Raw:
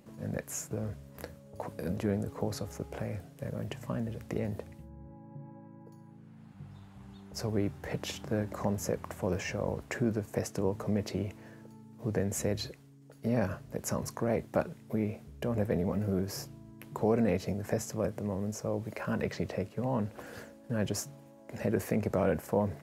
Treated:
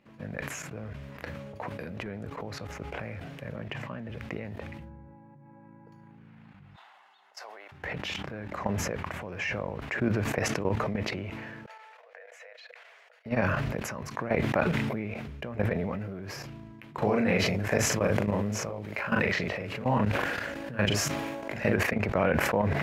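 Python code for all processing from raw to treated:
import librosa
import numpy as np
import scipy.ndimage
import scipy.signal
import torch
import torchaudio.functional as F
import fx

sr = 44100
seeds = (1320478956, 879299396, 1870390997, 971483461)

y = fx.chain(x, sr, fx.highpass(hz=100.0, slope=12),
    fx.high_shelf(hz=6200.0, db=-8.0), at=(3.56, 4.1))
y = fx.chain(y, sr, fx.ladder_highpass(hz=600.0, resonance_pct=40),
    fx.high_shelf(hz=2600.0, db=6.5),
    fx.notch(hz=2400.0, q=11.0), at=(6.76, 7.72))
y = fx.chain(y, sr, fx.level_steps(step_db=22),
    fx.cheby_ripple_highpass(hz=470.0, ripple_db=6),
    fx.high_shelf(hz=10000.0, db=-8.5), at=(11.66, 13.26))
y = fx.chain(y, sr, fx.high_shelf(hz=5100.0, db=6.0),
    fx.doubler(ms=39.0, db=-2),
    fx.pre_swell(db_per_s=67.0), at=(16.98, 21.76))
y = fx.level_steps(y, sr, step_db=14)
y = fx.curve_eq(y, sr, hz=(470.0, 2400.0, 8700.0), db=(0, 11, -11))
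y = fx.sustainer(y, sr, db_per_s=24.0)
y = y * librosa.db_to_amplitude(2.5)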